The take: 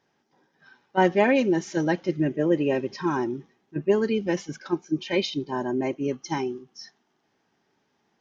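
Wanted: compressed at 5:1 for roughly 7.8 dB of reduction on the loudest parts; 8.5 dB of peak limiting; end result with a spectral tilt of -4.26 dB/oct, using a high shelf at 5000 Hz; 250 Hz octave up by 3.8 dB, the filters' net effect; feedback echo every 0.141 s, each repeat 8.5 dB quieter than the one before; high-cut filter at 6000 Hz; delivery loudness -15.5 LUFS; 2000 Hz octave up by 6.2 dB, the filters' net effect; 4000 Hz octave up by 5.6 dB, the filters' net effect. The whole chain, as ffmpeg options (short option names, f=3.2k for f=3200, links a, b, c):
-af "lowpass=6k,equalizer=f=250:t=o:g=5,equalizer=f=2k:t=o:g=6.5,equalizer=f=4k:t=o:g=8.5,highshelf=f=5k:g=-7,acompressor=threshold=-21dB:ratio=5,alimiter=limit=-18dB:level=0:latency=1,aecho=1:1:141|282|423|564:0.376|0.143|0.0543|0.0206,volume=12.5dB"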